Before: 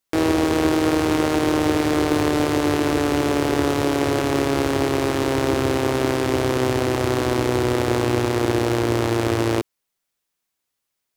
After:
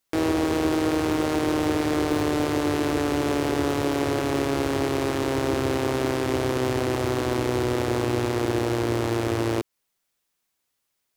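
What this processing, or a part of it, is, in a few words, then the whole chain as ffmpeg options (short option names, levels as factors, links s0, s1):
clipper into limiter: -af "asoftclip=type=hard:threshold=0.316,alimiter=limit=0.158:level=0:latency=1:release=169,volume=1.26"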